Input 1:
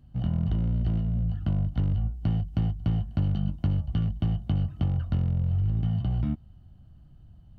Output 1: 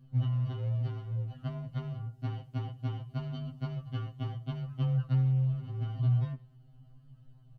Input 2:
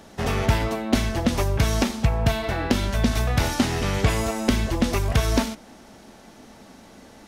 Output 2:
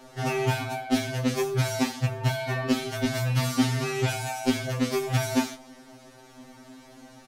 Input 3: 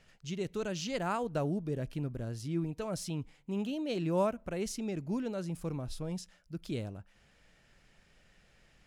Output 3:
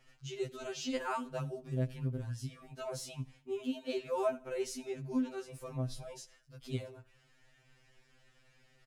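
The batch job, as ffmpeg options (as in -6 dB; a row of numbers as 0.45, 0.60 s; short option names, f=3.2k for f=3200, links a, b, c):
-af "acontrast=71,aecho=1:1:80|160|240:0.0891|0.0312|0.0109,afftfilt=real='re*2.45*eq(mod(b,6),0)':imag='im*2.45*eq(mod(b,6),0)':win_size=2048:overlap=0.75,volume=-6.5dB"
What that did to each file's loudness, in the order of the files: -5.5, -3.5, -2.5 LU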